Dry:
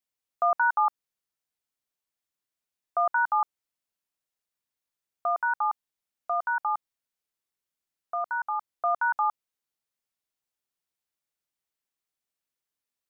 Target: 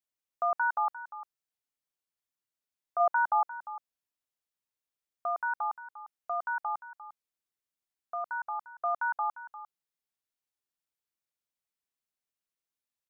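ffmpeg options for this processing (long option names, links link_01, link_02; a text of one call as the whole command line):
ffmpeg -i in.wav -filter_complex "[0:a]asplit=3[link_01][link_02][link_03];[link_01]afade=type=out:start_time=2.99:duration=0.02[link_04];[link_02]equalizer=frequency=680:width_type=o:width=1.1:gain=7,afade=type=in:start_time=2.99:duration=0.02,afade=type=out:start_time=3.42:duration=0.02[link_05];[link_03]afade=type=in:start_time=3.42:duration=0.02[link_06];[link_04][link_05][link_06]amix=inputs=3:normalize=0,asplit=2[link_07][link_08];[link_08]aecho=0:1:350:0.188[link_09];[link_07][link_09]amix=inputs=2:normalize=0,volume=-5dB" out.wav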